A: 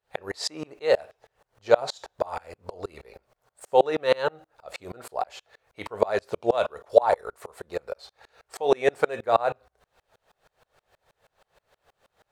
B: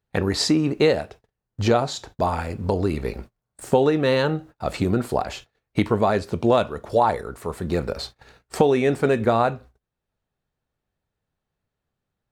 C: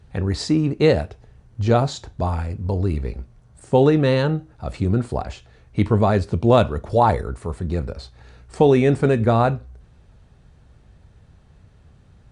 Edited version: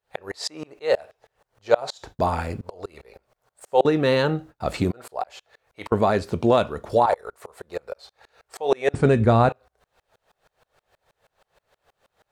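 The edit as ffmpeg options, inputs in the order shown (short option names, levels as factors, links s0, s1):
-filter_complex "[1:a]asplit=3[s0][s1][s2];[0:a]asplit=5[s3][s4][s5][s6][s7];[s3]atrim=end=2.032[s8];[s0]atrim=start=2.028:end=2.612[s9];[s4]atrim=start=2.608:end=3.852[s10];[s1]atrim=start=3.848:end=4.912[s11];[s5]atrim=start=4.908:end=5.922[s12];[s2]atrim=start=5.918:end=7.062[s13];[s6]atrim=start=7.058:end=8.942[s14];[2:a]atrim=start=8.938:end=9.492[s15];[s7]atrim=start=9.488[s16];[s8][s9]acrossfade=d=0.004:c1=hsin:c2=hsin[s17];[s17][s10]acrossfade=d=0.004:c1=hsin:c2=hsin[s18];[s18][s11]acrossfade=d=0.004:c1=hsin:c2=hsin[s19];[s19][s12]acrossfade=d=0.004:c1=hsin:c2=hsin[s20];[s20][s13]acrossfade=d=0.004:c1=hsin:c2=hsin[s21];[s21][s14]acrossfade=d=0.004:c1=hsin:c2=hsin[s22];[s22][s15]acrossfade=d=0.004:c1=hsin:c2=hsin[s23];[s23][s16]acrossfade=d=0.004:c1=hsin:c2=hsin"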